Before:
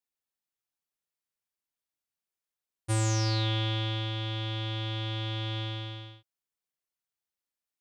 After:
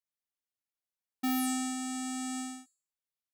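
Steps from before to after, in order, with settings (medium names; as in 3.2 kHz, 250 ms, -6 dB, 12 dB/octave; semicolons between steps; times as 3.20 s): on a send: feedback echo behind a high-pass 131 ms, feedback 40%, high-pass 4 kHz, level -8 dB; on the sum: speed mistake 33 rpm record played at 78 rpm; trim -3 dB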